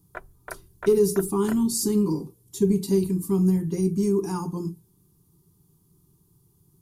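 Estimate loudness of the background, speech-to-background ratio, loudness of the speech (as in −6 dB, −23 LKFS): −43.5 LKFS, 19.5 dB, −24.0 LKFS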